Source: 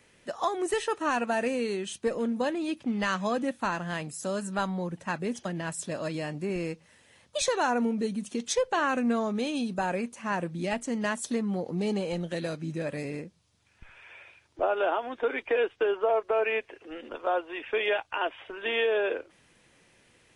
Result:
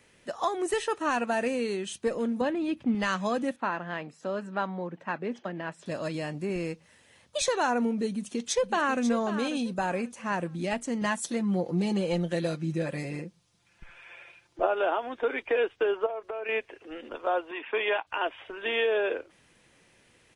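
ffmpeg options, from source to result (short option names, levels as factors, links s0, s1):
-filter_complex "[0:a]asettb=1/sr,asplit=3[s0][s1][s2];[s0]atrim=end=2.414[s3];[s1]atrim=start=2.41:end=2.95,asetpts=PTS-STARTPTS,afade=t=in:d=0.004:c=qsin,afade=t=out:st=0.536:d=0.004:c=qsin,bass=f=250:g=6,treble=f=4000:g=-10[s4];[s2]atrim=start=2.946[s5];[s3][s4]acrossfade=d=0.004:c1=hsin:c2=qsin[s6];[s6][s5]acrossfade=d=0.004:c1=qsin:c2=hsin,asettb=1/sr,asplit=3[s7][s8][s9];[s7]atrim=end=3.564[s10];[s8]atrim=start=3.56:end=5.86,asetpts=PTS-STARTPTS,afade=t=in:d=0.004:c=qsin,afade=t=out:st=2.296:d=0.004:c=qsin,highpass=220,lowpass=2600[s11];[s9]atrim=start=5.856[s12];[s10][s11]acrossfade=d=0.004:c1=hsin:c2=qsin[s13];[s13][s12]acrossfade=d=0.004:c1=qsin:c2=hsin,asplit=2[s14][s15];[s15]afade=t=in:st=8.09:d=0.01,afade=t=out:st=9.03:d=0.01,aecho=0:1:540|1080|1620:0.298538|0.0746346|0.0186586[s16];[s14][s16]amix=inputs=2:normalize=0,asettb=1/sr,asplit=3[s17][s18][s19];[s17]atrim=end=11.014[s20];[s18]atrim=start=11.01:end=14.67,asetpts=PTS-STARTPTS,afade=t=in:d=0.004:c=qsin,afade=t=out:st=3.656:d=0.004:c=qsin,aecho=1:1:5.8:0.63,atrim=end_sample=161406[s21];[s19]atrim=start=14.666[s22];[s20][s21]acrossfade=d=0.004:c1=hsin:c2=qsin[s23];[s23][s22]acrossfade=d=0.004:c1=qsin:c2=hsin,asettb=1/sr,asplit=3[s24][s25][s26];[s24]atrim=end=16.064[s27];[s25]atrim=start=16.06:end=16.49,asetpts=PTS-STARTPTS,afade=t=in:d=0.004:c=qsin,afade=t=out:st=0.426:d=0.004:c=qsin,acompressor=threshold=0.0251:ratio=6:attack=3.2:release=140:knee=1:detection=peak[s28];[s26]atrim=start=16.486[s29];[s27][s28]acrossfade=d=0.004:c1=hsin:c2=qsin[s30];[s30][s29]acrossfade=d=0.004:c1=qsin:c2=hsin,asettb=1/sr,asplit=3[s31][s32][s33];[s31]atrim=end=17.514[s34];[s32]atrim=start=17.51:end=18.07,asetpts=PTS-STARTPTS,afade=t=in:d=0.004:c=qsin,afade=t=out:st=0.556:d=0.004:c=qsin,highpass=f=140:w=0.5412,highpass=f=140:w=1.3066,equalizer=f=160:t=q:w=4:g=-10,equalizer=f=530:t=q:w=4:g=-4,equalizer=f=1000:t=q:w=4:g=8,lowpass=f=3800:w=0.5412,lowpass=f=3800:w=1.3066[s35];[s33]atrim=start=18.066[s36];[s34][s35]acrossfade=d=0.004:c1=hsin:c2=qsin[s37];[s37][s36]acrossfade=d=0.004:c1=qsin:c2=hsin"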